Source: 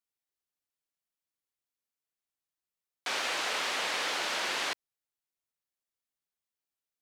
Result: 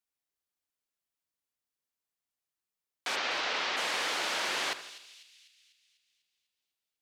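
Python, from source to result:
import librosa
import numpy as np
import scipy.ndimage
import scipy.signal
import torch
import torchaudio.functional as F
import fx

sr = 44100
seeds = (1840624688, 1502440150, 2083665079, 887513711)

y = fx.lowpass(x, sr, hz=5600.0, slope=24, at=(3.15, 3.76), fade=0.02)
y = fx.echo_split(y, sr, split_hz=2700.0, low_ms=81, high_ms=248, feedback_pct=52, wet_db=-13)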